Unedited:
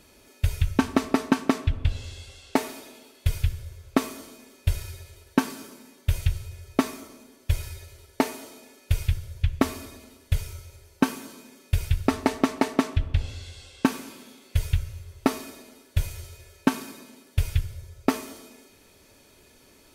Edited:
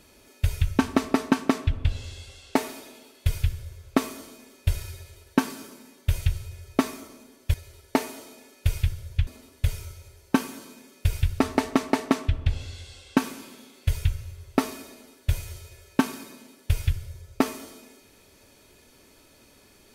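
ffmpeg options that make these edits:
-filter_complex "[0:a]asplit=3[s0][s1][s2];[s0]atrim=end=7.542[s3];[s1]atrim=start=7.788:end=9.522[s4];[s2]atrim=start=9.948[s5];[s3][s4]acrossfade=d=0.004:c1=hsin:c2=hsin[s6];[s6][s5]acrossfade=d=0.004:c1=hsin:c2=hsin"

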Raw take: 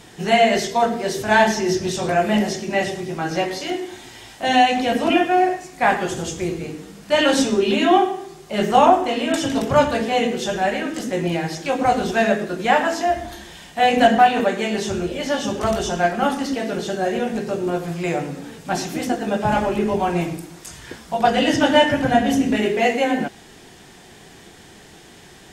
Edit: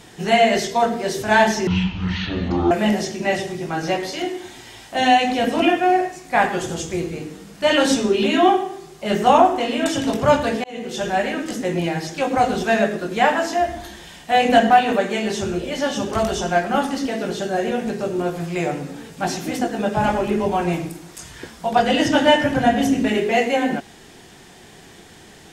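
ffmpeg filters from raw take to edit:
-filter_complex "[0:a]asplit=4[s0][s1][s2][s3];[s0]atrim=end=1.674[s4];[s1]atrim=start=1.67:end=2.19,asetpts=PTS-STARTPTS,asetrate=22050,aresample=44100[s5];[s2]atrim=start=2.186:end=10.12,asetpts=PTS-STARTPTS,afade=t=out:st=7.93:d=0.004:c=hsin[s6];[s3]atrim=start=10.12,asetpts=PTS-STARTPTS,afade=t=in:d=0.42[s7];[s4][s5]acrossfade=d=0.004:c1=hsin:c2=hsin[s8];[s6][s7]concat=n=2:v=0:a=1[s9];[s8][s9]acrossfade=d=0.004:c1=hsin:c2=hsin"

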